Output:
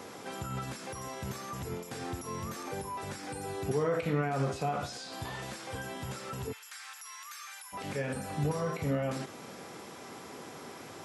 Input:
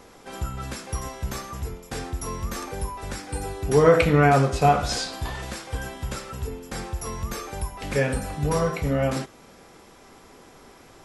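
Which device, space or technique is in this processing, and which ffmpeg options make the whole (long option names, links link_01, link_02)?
de-esser from a sidechain: -filter_complex "[0:a]asplit=3[link_01][link_02][link_03];[link_01]afade=type=out:start_time=6.51:duration=0.02[link_04];[link_02]highpass=frequency=1300:width=0.5412,highpass=frequency=1300:width=1.3066,afade=type=in:start_time=6.51:duration=0.02,afade=type=out:start_time=7.72:duration=0.02[link_05];[link_03]afade=type=in:start_time=7.72:duration=0.02[link_06];[link_04][link_05][link_06]amix=inputs=3:normalize=0,asplit=2[link_07][link_08];[link_08]highpass=frequency=4800:poles=1,apad=whole_len=486892[link_09];[link_07][link_09]sidechaincompress=threshold=-51dB:ratio=4:attack=0.85:release=52,highpass=frequency=100:width=0.5412,highpass=frequency=100:width=1.3066,volume=4dB"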